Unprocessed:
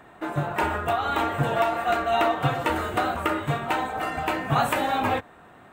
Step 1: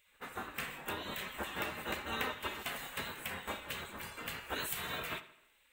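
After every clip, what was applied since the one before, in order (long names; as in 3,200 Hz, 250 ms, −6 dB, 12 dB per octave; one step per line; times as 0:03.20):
gate on every frequency bin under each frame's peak −15 dB weak
high-shelf EQ 12,000 Hz +11.5 dB
tape delay 82 ms, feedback 48%, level −14.5 dB, low-pass 5,300 Hz
level −6.5 dB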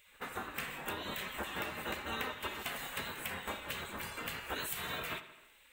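downward compressor 2 to 1, threshold −48 dBFS, peak gain reduction 9.5 dB
level +6.5 dB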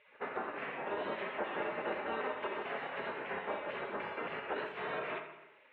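brickwall limiter −31 dBFS, peak gain reduction 10 dB
loudspeaker in its box 190–2,500 Hz, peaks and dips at 410 Hz +9 dB, 610 Hz +8 dB, 870 Hz +4 dB
on a send at −9.5 dB: convolution reverb, pre-delay 58 ms
on the sum: level +1.5 dB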